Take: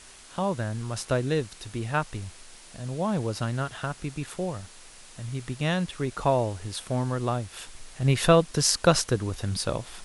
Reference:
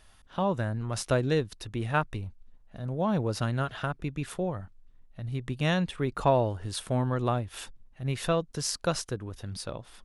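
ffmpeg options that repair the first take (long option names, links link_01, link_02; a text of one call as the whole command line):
ffmpeg -i in.wav -af "afwtdn=0.0045,asetnsamples=nb_out_samples=441:pad=0,asendcmd='7.75 volume volume -8.5dB',volume=0dB" out.wav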